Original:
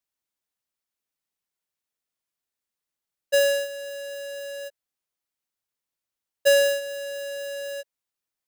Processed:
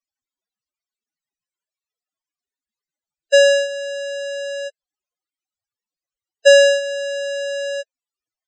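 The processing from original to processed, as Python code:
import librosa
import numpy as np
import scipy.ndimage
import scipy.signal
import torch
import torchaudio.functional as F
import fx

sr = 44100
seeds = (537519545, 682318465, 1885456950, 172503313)

y = fx.spec_topn(x, sr, count=32)
y = scipy.signal.sosfilt(scipy.signal.butter(16, 8400.0, 'lowpass', fs=sr, output='sos'), y)
y = y * librosa.db_to_amplitude(8.5)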